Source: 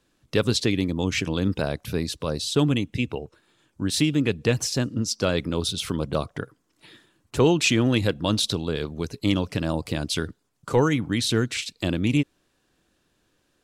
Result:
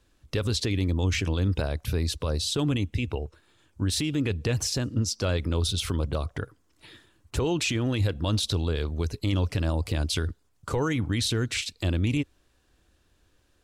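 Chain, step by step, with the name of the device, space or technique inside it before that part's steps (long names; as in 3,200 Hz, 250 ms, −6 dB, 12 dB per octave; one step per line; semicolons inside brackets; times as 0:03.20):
car stereo with a boomy subwoofer (low shelf with overshoot 110 Hz +9.5 dB, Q 1.5; brickwall limiter −17.5 dBFS, peak gain reduction 9.5 dB)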